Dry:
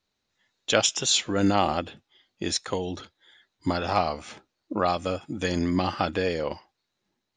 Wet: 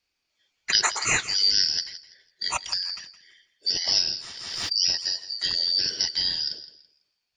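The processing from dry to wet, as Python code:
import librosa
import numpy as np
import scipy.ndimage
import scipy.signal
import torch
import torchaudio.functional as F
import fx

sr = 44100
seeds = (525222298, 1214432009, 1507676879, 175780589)

y = fx.band_shuffle(x, sr, order='4321')
y = fx.echo_feedback(y, sr, ms=166, feedback_pct=25, wet_db=-14.5)
y = fx.pre_swell(y, sr, db_per_s=39.0, at=(3.87, 5.02))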